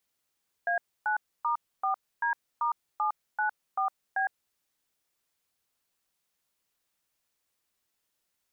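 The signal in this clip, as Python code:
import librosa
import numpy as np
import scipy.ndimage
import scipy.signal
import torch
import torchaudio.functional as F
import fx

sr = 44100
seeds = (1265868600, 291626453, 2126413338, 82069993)

y = fx.dtmf(sr, digits='A9*4D*794B', tone_ms=109, gap_ms=279, level_db=-27.5)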